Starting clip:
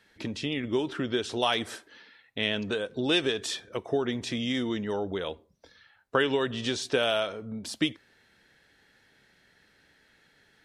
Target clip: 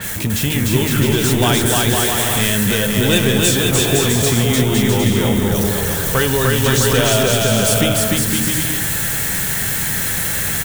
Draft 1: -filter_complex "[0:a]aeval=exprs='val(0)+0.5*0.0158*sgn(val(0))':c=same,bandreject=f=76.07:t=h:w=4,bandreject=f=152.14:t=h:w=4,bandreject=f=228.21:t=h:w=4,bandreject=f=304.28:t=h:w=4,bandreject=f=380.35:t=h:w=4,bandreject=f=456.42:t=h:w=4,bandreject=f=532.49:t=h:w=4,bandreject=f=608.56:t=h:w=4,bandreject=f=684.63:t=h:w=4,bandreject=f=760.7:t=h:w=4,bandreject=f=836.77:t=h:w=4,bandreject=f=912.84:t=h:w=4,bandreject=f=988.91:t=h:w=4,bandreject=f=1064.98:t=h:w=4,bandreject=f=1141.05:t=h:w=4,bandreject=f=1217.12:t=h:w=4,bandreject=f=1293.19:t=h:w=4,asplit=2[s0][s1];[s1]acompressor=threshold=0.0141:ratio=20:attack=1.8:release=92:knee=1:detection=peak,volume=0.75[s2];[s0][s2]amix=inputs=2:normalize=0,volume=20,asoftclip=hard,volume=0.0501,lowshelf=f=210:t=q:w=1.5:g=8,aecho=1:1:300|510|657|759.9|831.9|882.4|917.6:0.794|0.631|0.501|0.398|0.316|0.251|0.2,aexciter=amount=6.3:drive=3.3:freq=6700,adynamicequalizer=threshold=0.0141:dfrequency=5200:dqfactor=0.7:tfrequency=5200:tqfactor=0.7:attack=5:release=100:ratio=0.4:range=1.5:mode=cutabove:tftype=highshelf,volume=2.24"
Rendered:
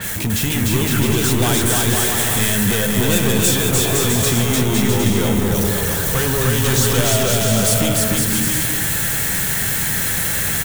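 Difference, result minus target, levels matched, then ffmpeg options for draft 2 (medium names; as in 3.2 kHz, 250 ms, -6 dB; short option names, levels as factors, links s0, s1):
overload inside the chain: distortion +13 dB
-filter_complex "[0:a]aeval=exprs='val(0)+0.5*0.0158*sgn(val(0))':c=same,bandreject=f=76.07:t=h:w=4,bandreject=f=152.14:t=h:w=4,bandreject=f=228.21:t=h:w=4,bandreject=f=304.28:t=h:w=4,bandreject=f=380.35:t=h:w=4,bandreject=f=456.42:t=h:w=4,bandreject=f=532.49:t=h:w=4,bandreject=f=608.56:t=h:w=4,bandreject=f=684.63:t=h:w=4,bandreject=f=760.7:t=h:w=4,bandreject=f=836.77:t=h:w=4,bandreject=f=912.84:t=h:w=4,bandreject=f=988.91:t=h:w=4,bandreject=f=1064.98:t=h:w=4,bandreject=f=1141.05:t=h:w=4,bandreject=f=1217.12:t=h:w=4,bandreject=f=1293.19:t=h:w=4,asplit=2[s0][s1];[s1]acompressor=threshold=0.0141:ratio=20:attack=1.8:release=92:knee=1:detection=peak,volume=0.75[s2];[s0][s2]amix=inputs=2:normalize=0,volume=6.68,asoftclip=hard,volume=0.15,lowshelf=f=210:t=q:w=1.5:g=8,aecho=1:1:300|510|657|759.9|831.9|882.4|917.6:0.794|0.631|0.501|0.398|0.316|0.251|0.2,aexciter=amount=6.3:drive=3.3:freq=6700,adynamicequalizer=threshold=0.0141:dfrequency=5200:dqfactor=0.7:tfrequency=5200:tqfactor=0.7:attack=5:release=100:ratio=0.4:range=1.5:mode=cutabove:tftype=highshelf,volume=2.24"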